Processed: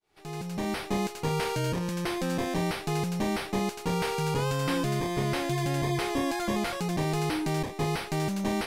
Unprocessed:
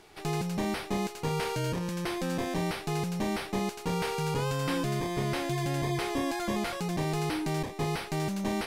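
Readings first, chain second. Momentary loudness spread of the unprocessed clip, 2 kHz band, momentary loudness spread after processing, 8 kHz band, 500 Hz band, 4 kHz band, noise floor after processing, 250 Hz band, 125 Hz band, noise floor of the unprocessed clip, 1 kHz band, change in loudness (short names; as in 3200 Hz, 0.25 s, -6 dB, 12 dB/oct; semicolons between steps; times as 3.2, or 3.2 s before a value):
2 LU, +2.0 dB, 3 LU, +2.0 dB, +2.0 dB, +2.0 dB, -42 dBFS, +2.0 dB, +2.0 dB, -44 dBFS, +2.0 dB, +2.0 dB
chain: opening faded in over 0.85 s; gain +2 dB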